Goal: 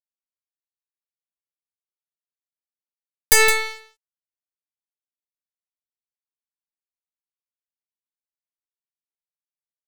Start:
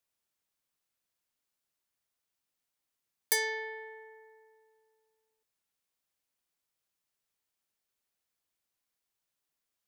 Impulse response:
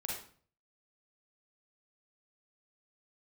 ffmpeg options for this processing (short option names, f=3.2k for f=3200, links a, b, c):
-af "bandreject=f=1.1k:w=30,bandreject=f=53.72:t=h:w=4,bandreject=f=107.44:t=h:w=4,bandreject=f=161.16:t=h:w=4,bandreject=f=214.88:t=h:w=4,bandreject=f=268.6:t=h:w=4,bandreject=f=322.32:t=h:w=4,bandreject=f=376.04:t=h:w=4,bandreject=f=429.76:t=h:w=4,bandreject=f=483.48:t=h:w=4,bandreject=f=537.2:t=h:w=4,bandreject=f=590.92:t=h:w=4,bandreject=f=644.64:t=h:w=4,bandreject=f=698.36:t=h:w=4,bandreject=f=752.08:t=h:w=4,bandreject=f=805.8:t=h:w=4,bandreject=f=859.52:t=h:w=4,bandreject=f=913.24:t=h:w=4,bandreject=f=966.96:t=h:w=4,bandreject=f=1.02068k:t=h:w=4,bandreject=f=1.0744k:t=h:w=4,bandreject=f=1.12812k:t=h:w=4,bandreject=f=1.18184k:t=h:w=4,bandreject=f=1.23556k:t=h:w=4,bandreject=f=1.28928k:t=h:w=4,bandreject=f=1.343k:t=h:w=4,bandreject=f=1.39672k:t=h:w=4,bandreject=f=1.45044k:t=h:w=4,bandreject=f=1.50416k:t=h:w=4,bandreject=f=1.55788k:t=h:w=4,aeval=exprs='0.237*(cos(1*acos(clip(val(0)/0.237,-1,1)))-cos(1*PI/2))+0.0335*(cos(8*acos(clip(val(0)/0.237,-1,1)))-cos(8*PI/2))':c=same,aeval=exprs='sgn(val(0))*max(abs(val(0))-0.0126,0)':c=same,aecho=1:1:165:0.133,alimiter=level_in=23dB:limit=-1dB:release=50:level=0:latency=1,volume=-1dB"